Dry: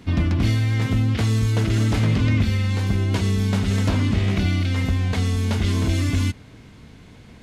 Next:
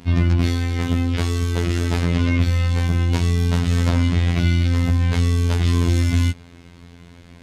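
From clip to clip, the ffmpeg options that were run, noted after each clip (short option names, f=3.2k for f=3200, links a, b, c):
-af "afftfilt=real='hypot(re,im)*cos(PI*b)':imag='0':win_size=2048:overlap=0.75,volume=4.5dB"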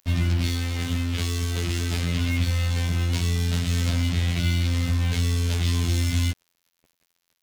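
-filter_complex "[0:a]acrossover=split=190|2300[a][b][c];[b]asoftclip=type=tanh:threshold=-25dB[d];[c]acontrast=50[e];[a][d][e]amix=inputs=3:normalize=0,acrusher=bits=4:mix=0:aa=0.5,volume=-5dB"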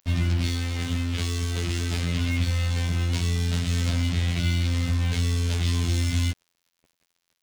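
-af "equalizer=f=13k:w=3.2:g=-10.5,volume=-1dB"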